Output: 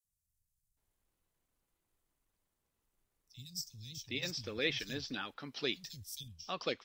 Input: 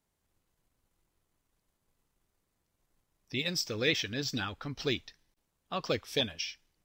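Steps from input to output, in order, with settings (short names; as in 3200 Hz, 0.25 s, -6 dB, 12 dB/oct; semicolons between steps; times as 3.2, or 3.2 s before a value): high shelf 3700 Hz +3.5 dB, from 4.46 s +11 dB, from 6.28 s -2.5 dB; three bands offset in time highs, lows, mids 40/770 ms, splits 150/5200 Hz; gain -5.5 dB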